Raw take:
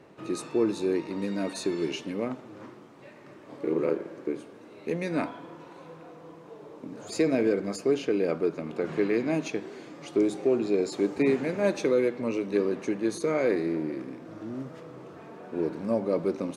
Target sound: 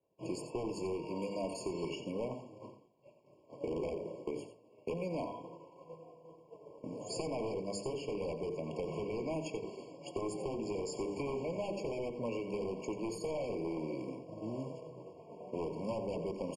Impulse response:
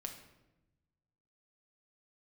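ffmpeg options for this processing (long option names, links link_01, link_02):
-filter_complex "[0:a]bandreject=frequency=50:width_type=h:width=6,bandreject=frequency=100:width_type=h:width=6,bandreject=frequency=150:width_type=h:width=6,bandreject=frequency=200:width_type=h:width=6,bandreject=frequency=250:width_type=h:width=6,bandreject=frequency=300:width_type=h:width=6,bandreject=frequency=350:width_type=h:width=6,bandreject=frequency=400:width_type=h:width=6,bandreject=frequency=450:width_type=h:width=6,agate=range=-33dB:threshold=-37dB:ratio=3:detection=peak,aecho=1:1:1.8:0.4,acrossover=split=1600[link_01][link_02];[link_01]aeval=exprs='0.0631*(abs(mod(val(0)/0.0631+3,4)-2)-1)':channel_layout=same[link_03];[link_03][link_02]amix=inputs=2:normalize=0,acrossover=split=200|870[link_04][link_05][link_06];[link_04]acompressor=threshold=-51dB:ratio=4[link_07];[link_05]acompressor=threshold=-44dB:ratio=4[link_08];[link_06]acompressor=threshold=-45dB:ratio=4[link_09];[link_07][link_08][link_09]amix=inputs=3:normalize=0,equalizer=frequency=2400:width_type=o:width=0.91:gain=-6.5,asplit=2[link_10][link_11];[link_11]aecho=0:1:88:0.282[link_12];[link_10][link_12]amix=inputs=2:normalize=0,aresample=22050,aresample=44100,afftfilt=real='re*eq(mod(floor(b*sr/1024/1100),2),0)':imag='im*eq(mod(floor(b*sr/1024/1100),2),0)':win_size=1024:overlap=0.75,volume=4dB"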